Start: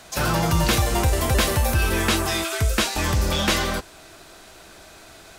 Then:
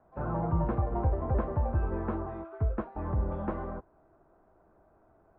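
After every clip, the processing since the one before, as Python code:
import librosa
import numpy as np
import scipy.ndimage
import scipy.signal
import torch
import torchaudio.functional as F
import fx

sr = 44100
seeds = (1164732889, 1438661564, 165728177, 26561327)

y = scipy.signal.sosfilt(scipy.signal.butter(4, 1100.0, 'lowpass', fs=sr, output='sos'), x)
y = fx.upward_expand(y, sr, threshold_db=-33.0, expansion=1.5)
y = y * librosa.db_to_amplitude(-6.0)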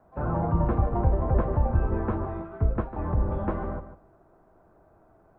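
y = fx.octave_divider(x, sr, octaves=1, level_db=-5.0)
y = fx.echo_feedback(y, sr, ms=148, feedback_pct=15, wet_db=-12.0)
y = y * librosa.db_to_amplitude(4.0)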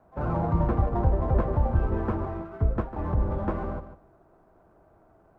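y = fx.running_max(x, sr, window=3)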